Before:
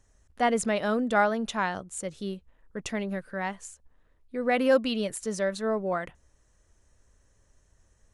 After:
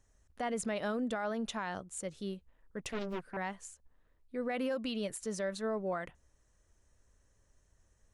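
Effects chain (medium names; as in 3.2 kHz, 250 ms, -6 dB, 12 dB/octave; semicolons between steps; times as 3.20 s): peak limiter -21.5 dBFS, peak gain reduction 11.5 dB; 2.81–3.37 s: loudspeaker Doppler distortion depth 0.99 ms; trim -5.5 dB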